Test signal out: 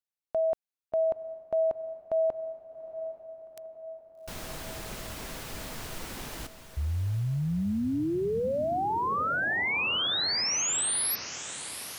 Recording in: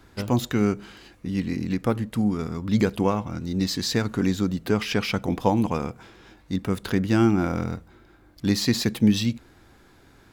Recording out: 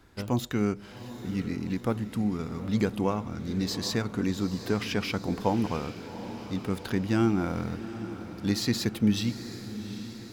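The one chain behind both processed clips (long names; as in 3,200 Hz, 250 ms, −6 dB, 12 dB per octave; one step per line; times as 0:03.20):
feedback delay with all-pass diffusion 780 ms, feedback 60%, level −12 dB
level −5 dB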